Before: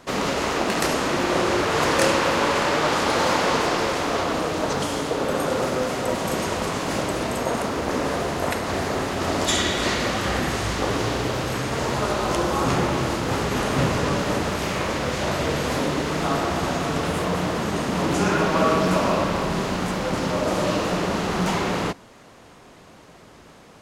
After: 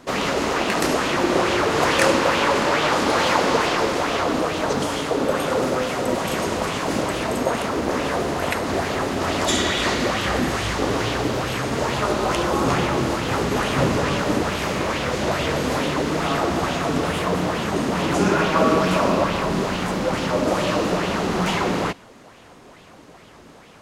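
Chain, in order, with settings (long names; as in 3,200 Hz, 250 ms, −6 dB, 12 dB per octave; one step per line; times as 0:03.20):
auto-filter bell 2.3 Hz 240–3,200 Hz +7 dB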